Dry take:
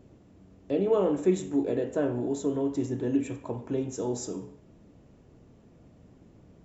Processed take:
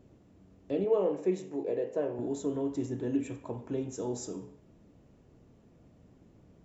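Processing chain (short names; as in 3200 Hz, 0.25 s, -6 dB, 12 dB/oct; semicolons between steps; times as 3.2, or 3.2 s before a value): 0.84–2.19 speaker cabinet 180–6000 Hz, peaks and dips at 260 Hz -10 dB, 490 Hz +4 dB, 1400 Hz -9 dB, 3500 Hz -8 dB; gain -4 dB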